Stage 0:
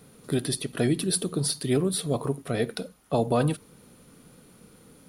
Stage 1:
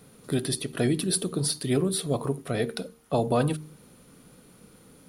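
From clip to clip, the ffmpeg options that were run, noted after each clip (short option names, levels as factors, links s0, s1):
-af "bandreject=f=76.69:t=h:w=4,bandreject=f=153.38:t=h:w=4,bandreject=f=230.07:t=h:w=4,bandreject=f=306.76:t=h:w=4,bandreject=f=383.45:t=h:w=4,bandreject=f=460.14:t=h:w=4"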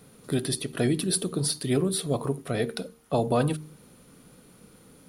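-af anull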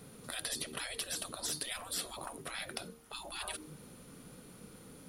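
-af "afftfilt=real='re*lt(hypot(re,im),0.0501)':imag='im*lt(hypot(re,im),0.0501)':win_size=1024:overlap=0.75"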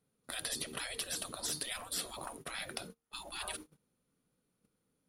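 -af "agate=range=0.0447:threshold=0.00501:ratio=16:detection=peak"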